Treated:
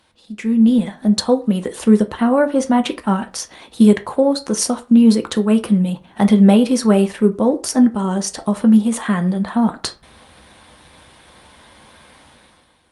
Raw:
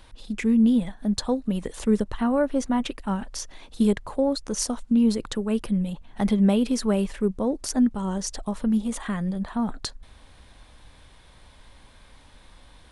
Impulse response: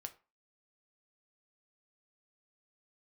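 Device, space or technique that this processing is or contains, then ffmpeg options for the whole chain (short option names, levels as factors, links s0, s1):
far-field microphone of a smart speaker: -filter_complex "[1:a]atrim=start_sample=2205[s0];[0:a][s0]afir=irnorm=-1:irlink=0,highpass=140,dynaudnorm=f=110:g=11:m=5.31,volume=1.12" -ar 48000 -c:a libopus -b:a 48k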